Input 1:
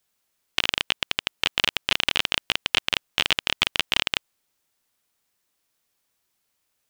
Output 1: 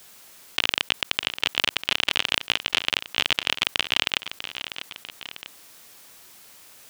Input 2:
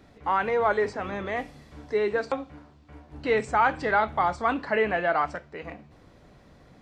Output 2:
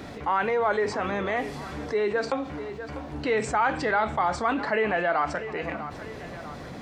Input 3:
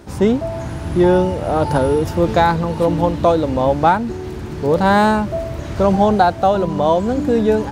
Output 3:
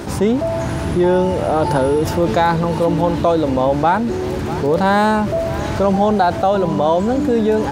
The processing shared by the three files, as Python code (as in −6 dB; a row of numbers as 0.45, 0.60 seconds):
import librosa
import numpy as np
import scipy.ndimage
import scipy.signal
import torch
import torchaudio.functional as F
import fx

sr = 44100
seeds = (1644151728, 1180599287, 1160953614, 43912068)

y = fx.low_shelf(x, sr, hz=69.0, db=-10.5)
y = fx.echo_feedback(y, sr, ms=646, feedback_pct=34, wet_db=-22.0)
y = fx.env_flatten(y, sr, amount_pct=50)
y = y * 10.0 ** (-2.5 / 20.0)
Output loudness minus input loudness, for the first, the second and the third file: −0.5, −1.0, 0.0 LU